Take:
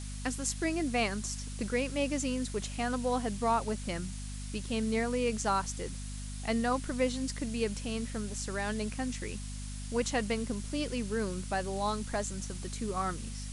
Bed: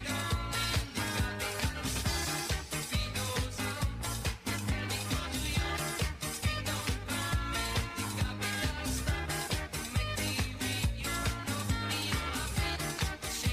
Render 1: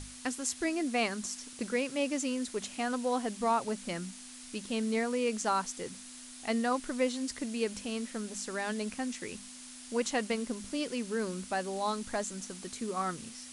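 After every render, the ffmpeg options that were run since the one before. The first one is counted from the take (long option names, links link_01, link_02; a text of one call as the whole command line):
ffmpeg -i in.wav -af "bandreject=frequency=50:width_type=h:width=6,bandreject=frequency=100:width_type=h:width=6,bandreject=frequency=150:width_type=h:width=6,bandreject=frequency=200:width_type=h:width=6" out.wav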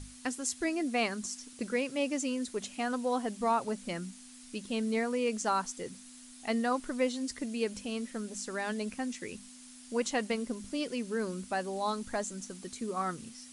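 ffmpeg -i in.wav -af "afftdn=noise_reduction=6:noise_floor=-48" out.wav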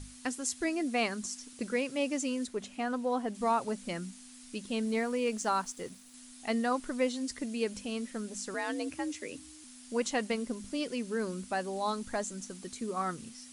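ffmpeg -i in.wav -filter_complex "[0:a]asettb=1/sr,asplit=3[link_01][link_02][link_03];[link_01]atrim=end=2.474[link_04];[link_02]atrim=start=2.47:end=3.35,asetpts=PTS-STARTPTS,afade=type=in:duration=0.004:curve=qsin,afade=type=out:start_time=0.876:duration=0.004:curve=qsin,highshelf=frequency=3500:gain=-8.5[link_05];[link_03]atrim=start=3.346[link_06];[link_04][link_05]acrossfade=duration=0.004:curve1=hsin:curve2=qsin[link_07];[link_07][link_06]acrossfade=duration=0.004:curve1=qsin:curve2=hsin,asettb=1/sr,asplit=3[link_08][link_09][link_10];[link_08]atrim=end=4.854[link_11];[link_09]atrim=start=4.85:end=6.14,asetpts=PTS-STARTPTS,afade=type=in:duration=0.004:curve=qsin,afade=type=out:start_time=1.286:duration=0.004:curve=qsin,aeval=exprs='sgn(val(0))*max(abs(val(0))-0.00133,0)':channel_layout=same[link_12];[link_10]atrim=start=6.136[link_13];[link_11][link_12]acrossfade=duration=0.004:curve1=hsin:curve2=qsin[link_14];[link_14][link_13]acrossfade=duration=0.004:curve1=qsin:curve2=hsin,asettb=1/sr,asplit=3[link_15][link_16][link_17];[link_15]atrim=end=8.544[link_18];[link_16]atrim=start=8.54:end=9.64,asetpts=PTS-STARTPTS,afade=type=in:duration=0.004:curve=qsin,afade=type=out:start_time=1.096:duration=0.004:curve=qsin,afreqshift=57[link_19];[link_17]atrim=start=9.636[link_20];[link_18][link_19]acrossfade=duration=0.004:curve1=hsin:curve2=qsin[link_21];[link_21][link_20]acrossfade=duration=0.004:curve1=qsin:curve2=hsin" out.wav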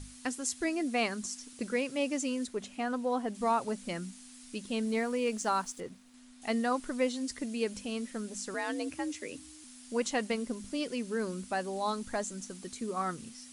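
ffmpeg -i in.wav -filter_complex "[0:a]asettb=1/sr,asplit=3[link_01][link_02][link_03];[link_01]atrim=end=5.804[link_04];[link_02]atrim=start=5.8:end=6.42,asetpts=PTS-STARTPTS,afade=type=in:duration=0.004:curve=qsin,afade=type=out:start_time=0.616:duration=0.004:curve=qsin,lowpass=frequency=2200:poles=1[link_05];[link_03]atrim=start=6.416[link_06];[link_04][link_05]acrossfade=duration=0.004:curve1=hsin:curve2=qsin[link_07];[link_07][link_06]acrossfade=duration=0.004:curve1=qsin:curve2=hsin" out.wav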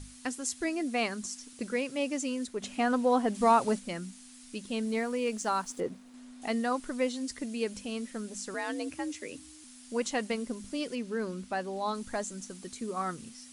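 ffmpeg -i in.wav -filter_complex "[0:a]asplit=3[link_01][link_02][link_03];[link_01]afade=type=out:start_time=2.62:duration=0.02[link_04];[link_02]acontrast=51,afade=type=in:start_time=2.62:duration=0.02,afade=type=out:start_time=3.78:duration=0.02[link_05];[link_03]afade=type=in:start_time=3.78:duration=0.02[link_06];[link_04][link_05][link_06]amix=inputs=3:normalize=0,asettb=1/sr,asplit=3[link_07][link_08][link_09];[link_07]atrim=end=5.704[link_10];[link_08]atrim=start=5.7:end=6.48,asetpts=PTS-STARTPTS,afade=type=in:duration=0.004:curve=qsin,afade=type=out:start_time=0.776:duration=0.004:curve=qsin,equalizer=frequency=450:width=0.39:gain=9[link_11];[link_09]atrim=start=6.476[link_12];[link_10][link_11]acrossfade=duration=0.004:curve1=hsin:curve2=qsin[link_13];[link_13][link_12]acrossfade=duration=0.004:curve1=qsin:curve2=hsin,asettb=1/sr,asplit=3[link_14][link_15][link_16];[link_14]atrim=end=10.954[link_17];[link_15]atrim=start=10.95:end=11.95,asetpts=PTS-STARTPTS,afade=type=in:duration=0.004:curve=qsin,afade=type=out:start_time=0.996:duration=0.004:curve=qsin,equalizer=frequency=9200:width=0.8:gain=-7.5[link_18];[link_16]atrim=start=11.946[link_19];[link_17][link_18]acrossfade=duration=0.004:curve1=hsin:curve2=qsin[link_20];[link_20][link_19]acrossfade=duration=0.004:curve1=qsin:curve2=hsin" out.wav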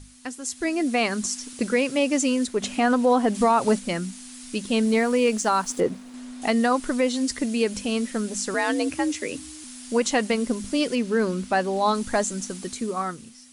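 ffmpeg -i in.wav -af "dynaudnorm=framelen=110:gausssize=13:maxgain=11dB,alimiter=limit=-11dB:level=0:latency=1:release=132" out.wav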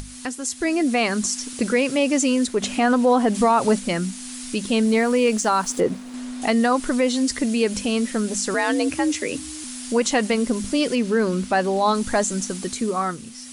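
ffmpeg -i in.wav -filter_complex "[0:a]asplit=2[link_01][link_02];[link_02]alimiter=limit=-22.5dB:level=0:latency=1,volume=-1dB[link_03];[link_01][link_03]amix=inputs=2:normalize=0,acompressor=mode=upward:threshold=-29dB:ratio=2.5" out.wav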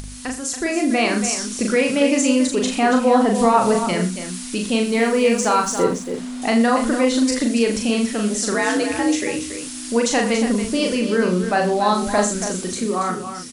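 ffmpeg -i in.wav -filter_complex "[0:a]asplit=2[link_01][link_02];[link_02]adelay=39,volume=-3.5dB[link_03];[link_01][link_03]amix=inputs=2:normalize=0,asplit=2[link_04][link_05];[link_05]aecho=0:1:81|281:0.251|0.335[link_06];[link_04][link_06]amix=inputs=2:normalize=0" out.wav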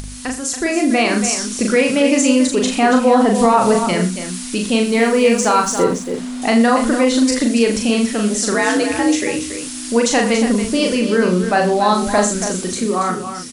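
ffmpeg -i in.wav -af "volume=3.5dB,alimiter=limit=-3dB:level=0:latency=1" out.wav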